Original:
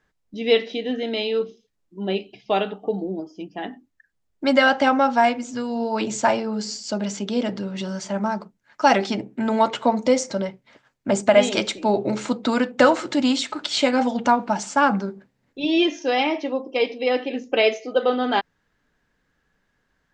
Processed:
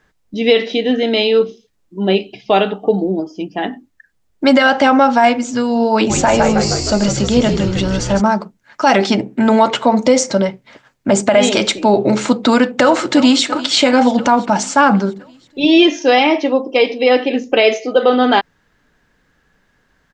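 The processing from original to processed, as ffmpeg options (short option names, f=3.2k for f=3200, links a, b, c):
-filter_complex "[0:a]asplit=3[a][b][c];[a]afade=t=out:st=6.09:d=0.02[d];[b]asplit=9[e][f][g][h][i][j][k][l][m];[f]adelay=156,afreqshift=-67,volume=-7dB[n];[g]adelay=312,afreqshift=-134,volume=-11.2dB[o];[h]adelay=468,afreqshift=-201,volume=-15.3dB[p];[i]adelay=624,afreqshift=-268,volume=-19.5dB[q];[j]adelay=780,afreqshift=-335,volume=-23.6dB[r];[k]adelay=936,afreqshift=-402,volume=-27.8dB[s];[l]adelay=1092,afreqshift=-469,volume=-31.9dB[t];[m]adelay=1248,afreqshift=-536,volume=-36.1dB[u];[e][n][o][p][q][r][s][t][u]amix=inputs=9:normalize=0,afade=t=in:st=6.09:d=0.02,afade=t=out:st=8.2:d=0.02[v];[c]afade=t=in:st=8.2:d=0.02[w];[d][v][w]amix=inputs=3:normalize=0,asplit=2[x][y];[y]afade=t=in:st=12.81:d=0.01,afade=t=out:st=13.43:d=0.01,aecho=0:1:340|680|1020|1360|1700|2040|2380:0.133352|0.0866789|0.0563413|0.0366218|0.0238042|0.0154727|0.0100573[z];[x][z]amix=inputs=2:normalize=0,alimiter=level_in=11.5dB:limit=-1dB:release=50:level=0:latency=1,volume=-1dB"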